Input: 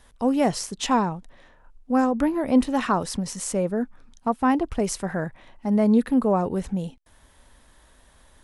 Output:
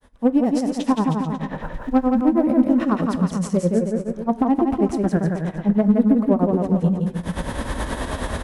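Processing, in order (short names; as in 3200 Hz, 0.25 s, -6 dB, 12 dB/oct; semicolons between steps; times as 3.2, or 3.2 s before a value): block floating point 7-bit; recorder AGC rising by 46 dB/s; HPF 120 Hz 6 dB/oct; high shelf 3300 Hz -7.5 dB; harmonic-percussive split harmonic +8 dB; tilt shelf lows +4 dB, about 650 Hz; compressor 2:1, threshold -13 dBFS, peak gain reduction 6 dB; grains 0.103 s, grains 9.4/s, spray 13 ms, pitch spread up and down by 0 st; added harmonics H 6 -26 dB, 8 -30 dB, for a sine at -5 dBFS; bouncing-ball echo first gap 0.17 s, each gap 0.85×, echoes 5; reverb RT60 0.45 s, pre-delay 7 ms, DRR 16.5 dB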